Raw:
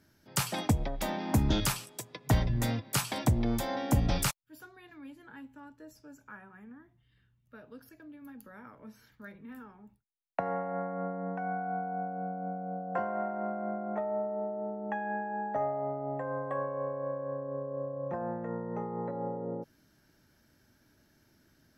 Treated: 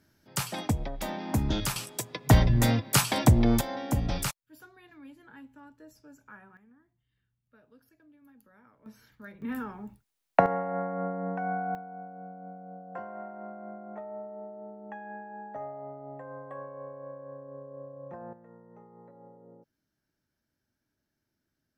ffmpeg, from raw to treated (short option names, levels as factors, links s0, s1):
-af "asetnsamples=n=441:p=0,asendcmd='1.76 volume volume 7dB;3.61 volume volume -1.5dB;6.57 volume volume -10dB;8.86 volume volume 1dB;9.42 volume volume 12dB;10.46 volume volume 3dB;11.75 volume volume -7.5dB;18.33 volume volume -17dB',volume=0.891"